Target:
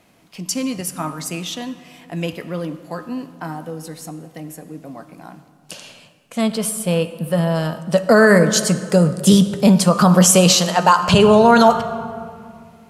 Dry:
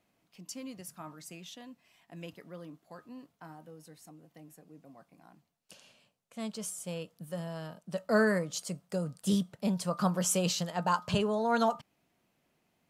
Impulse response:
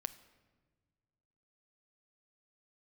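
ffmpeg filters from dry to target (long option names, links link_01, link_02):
-filter_complex "[0:a]asettb=1/sr,asplit=3[link_01][link_02][link_03];[link_01]atrim=end=6.414[link_04];[link_02]atrim=start=6.41:end=7.55,asetpts=PTS-STARTPTS,afade=type=in:duration=0.004:curve=qsin,afade=type=out:start_time=1.136:duration=0.004:curve=qsin,equalizer=frequency=6600:width=1.9:gain=-12[link_05];[link_03]atrim=start=7.546[link_06];[link_04][link_05]acrossfade=duration=0.004:curve1=hsin:curve2=qsin[link_07];[link_07][link_06]acrossfade=duration=0.004:curve1=qsin:curve2=hsin,asettb=1/sr,asplit=3[link_08][link_09][link_10];[link_08]atrim=end=10.534[link_11];[link_09]atrim=start=10.53:end=11.09,asetpts=PTS-STARTPTS,afade=type=in:duration=0.004:curve=qsin,afade=type=out:start_time=0.556:duration=0.004:curve=qsin,highpass=frequency=480:poles=1[link_12];[link_10]atrim=start=11.086[link_13];[link_11][link_12]acrossfade=duration=0.004:curve1=hsin:curve2=qsin[link_14];[link_14][link_13]acrossfade=duration=0.004:curve1=qsin:curve2=hsin[link_15];[1:a]atrim=start_sample=2205,asetrate=24696,aresample=44100[link_16];[link_15][link_16]afir=irnorm=-1:irlink=0,alimiter=level_in=19.5dB:limit=-1dB:release=50:level=0:latency=1,volume=-1dB"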